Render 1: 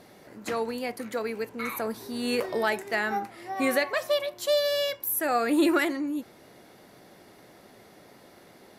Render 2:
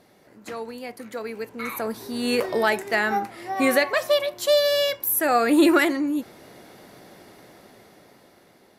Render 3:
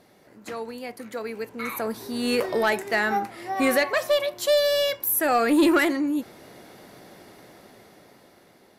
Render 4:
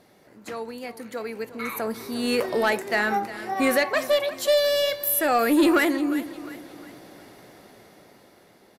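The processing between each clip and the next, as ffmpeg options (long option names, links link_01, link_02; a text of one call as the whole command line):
ffmpeg -i in.wav -af "dynaudnorm=framelen=380:gausssize=9:maxgain=11.5dB,volume=-4.5dB" out.wav
ffmpeg -i in.wav -af "asoftclip=type=tanh:threshold=-12dB" out.wav
ffmpeg -i in.wav -af "aecho=1:1:355|710|1065|1420:0.178|0.0765|0.0329|0.0141" out.wav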